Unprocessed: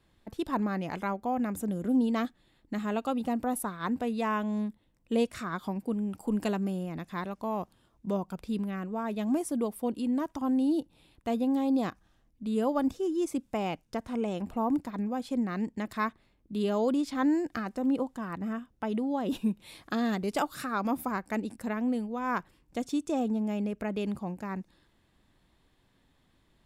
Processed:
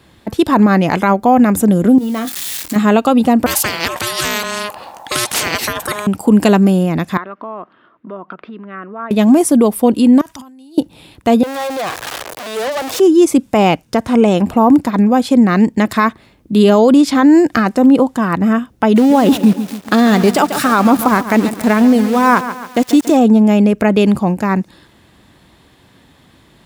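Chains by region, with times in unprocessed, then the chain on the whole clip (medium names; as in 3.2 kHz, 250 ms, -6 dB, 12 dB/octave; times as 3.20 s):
1.98–2.76 s: zero-crossing glitches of -32 dBFS + doubling 23 ms -9.5 dB + compression 12:1, threshold -36 dBFS
3.46–6.07 s: ring modulator 830 Hz + spectrum-flattening compressor 4:1
7.17–9.11 s: compression, threshold -40 dBFS + cabinet simulation 390–2500 Hz, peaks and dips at 500 Hz -7 dB, 830 Hz -9 dB, 1.3 kHz +6 dB, 2.4 kHz -5 dB
10.21–10.78 s: amplifier tone stack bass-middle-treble 5-5-5 + compressor with a negative ratio -58 dBFS
11.43–13.00 s: jump at every zero crossing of -32 dBFS + high-pass 470 Hz 24 dB/octave + valve stage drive 38 dB, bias 0.55
18.96–23.17 s: small samples zeroed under -41.5 dBFS + bit-crushed delay 140 ms, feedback 55%, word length 8-bit, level -13 dB
whole clip: high-pass 72 Hz; loudness maximiser +22 dB; trim -1 dB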